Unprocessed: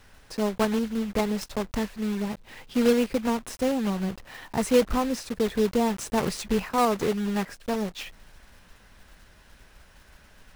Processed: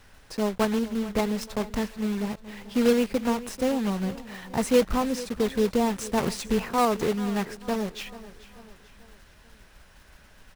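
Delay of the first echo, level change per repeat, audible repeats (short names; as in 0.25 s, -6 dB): 0.439 s, -6.5 dB, 3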